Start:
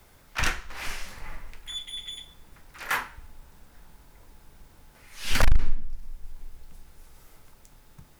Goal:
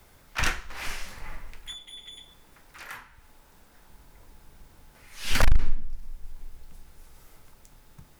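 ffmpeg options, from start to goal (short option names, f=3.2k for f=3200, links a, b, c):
-filter_complex "[0:a]asettb=1/sr,asplit=3[a][b][c];[a]atrim=end=1.724[d];[b]atrim=start=1.72:end=3.9,asetpts=PTS-STARTPTS,afade=t=in:d=0.004:c=qsin,afade=t=out:st=2.176:d=0.004:c=qsin,acrossover=split=210|1100[e][f][g];[e]acompressor=threshold=-54dB:ratio=4[h];[f]acompressor=threshold=-53dB:ratio=4[i];[g]acompressor=threshold=-43dB:ratio=4[j];[h][i][j]amix=inputs=3:normalize=0[k];[c]atrim=start=3.896[l];[d][k]acrossfade=d=0.004:c1=hsin:c2=qsin[m];[m][l]acrossfade=d=0.004:c1=qsin:c2=hsin"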